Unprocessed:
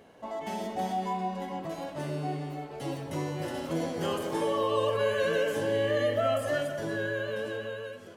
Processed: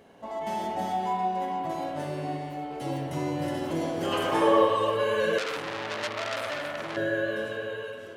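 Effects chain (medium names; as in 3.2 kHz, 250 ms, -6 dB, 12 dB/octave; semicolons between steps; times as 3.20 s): 4.11–4.64 s: peaking EQ 2.4 kHz -> 680 Hz +10 dB 2.3 oct; spring tank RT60 1.9 s, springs 51 ms, chirp 25 ms, DRR 1.5 dB; 5.38–6.97 s: transformer saturation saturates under 3.9 kHz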